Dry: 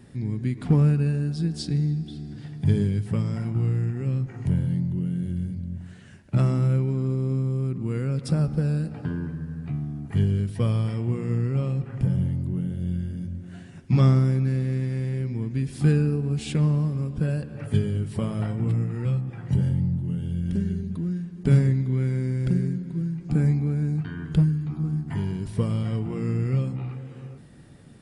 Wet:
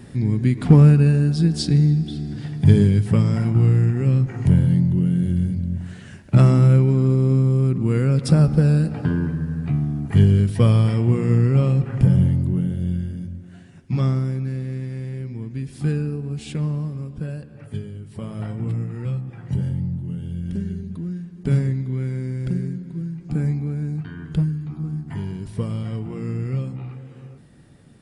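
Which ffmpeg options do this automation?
-af "volume=16.5dB,afade=t=out:st=12.22:d=1.31:silence=0.298538,afade=t=out:st=16.88:d=1.14:silence=0.446684,afade=t=in:st=18.02:d=0.49:silence=0.375837"

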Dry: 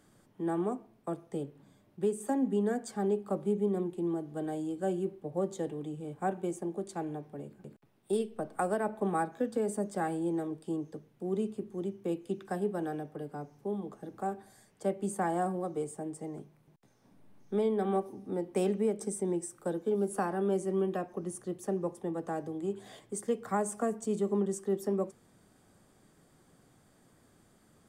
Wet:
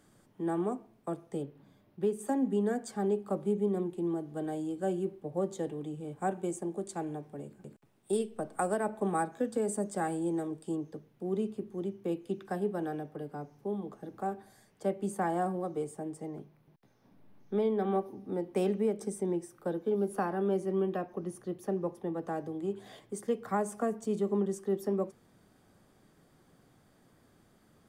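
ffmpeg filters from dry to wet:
-af "asetnsamples=n=441:p=0,asendcmd='1.42 equalizer g -11;2.19 equalizer g -0.5;6.17 equalizer g 5.5;10.75 equalizer g -5;16.27 equalizer g -14.5;18.29 equalizer g -7;19.26 equalizer g -14;22.22 equalizer g -7',equalizer=f=8k:t=o:w=0.57:g=0.5"

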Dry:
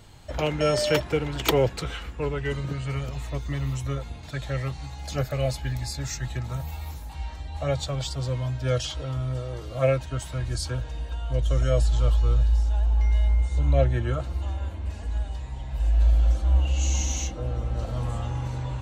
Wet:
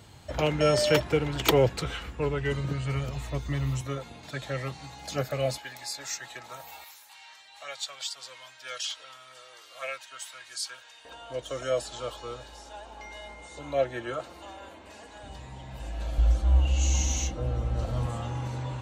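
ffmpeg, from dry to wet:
-af "asetnsamples=n=441:p=0,asendcmd='3.81 highpass f 180;5.58 highpass f 580;6.84 highpass f 1500;11.05 highpass f 370;15.23 highpass f 130;16.18 highpass f 45;18.06 highpass f 120',highpass=67"

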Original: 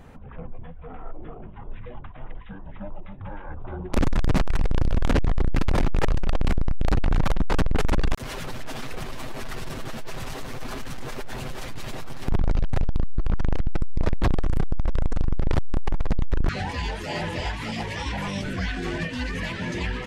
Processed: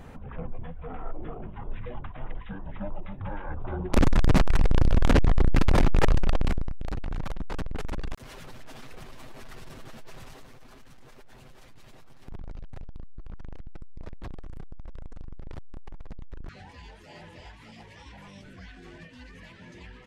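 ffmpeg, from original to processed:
-af "volume=1.5dB,afade=t=out:st=6.17:d=0.58:silence=0.237137,afade=t=out:st=10.17:d=0.45:silence=0.446684"

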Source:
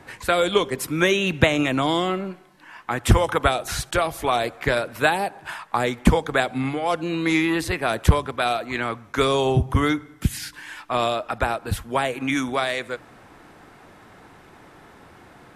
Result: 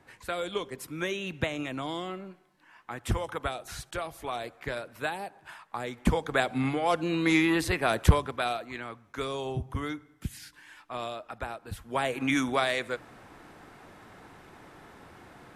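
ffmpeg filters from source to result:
-af "volume=7.5dB,afade=t=in:st=5.86:d=0.78:silence=0.316228,afade=t=out:st=7.99:d=0.84:silence=0.298538,afade=t=in:st=11.77:d=0.41:silence=0.298538"

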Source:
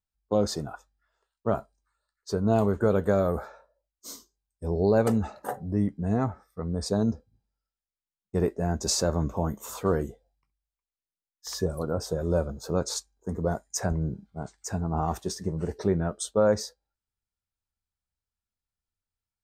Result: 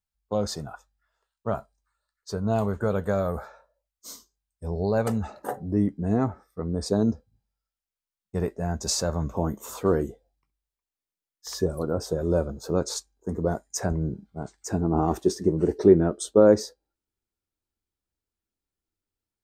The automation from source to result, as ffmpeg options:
-af "asetnsamples=n=441:p=0,asendcmd='5.29 equalizer g 5.5;7.13 equalizer g -4.5;9.35 equalizer g 5;14.69 equalizer g 14',equalizer=f=330:t=o:w=1:g=-6"

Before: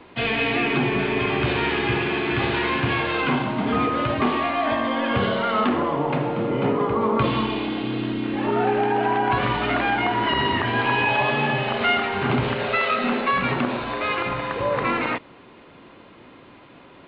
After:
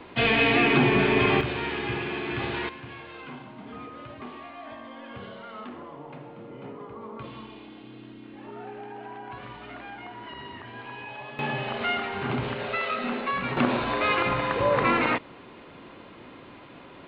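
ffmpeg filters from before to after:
-af "asetnsamples=n=441:p=0,asendcmd='1.41 volume volume -7.5dB;2.69 volume volume -19dB;11.39 volume volume -7dB;13.57 volume volume 0.5dB',volume=1.5dB"

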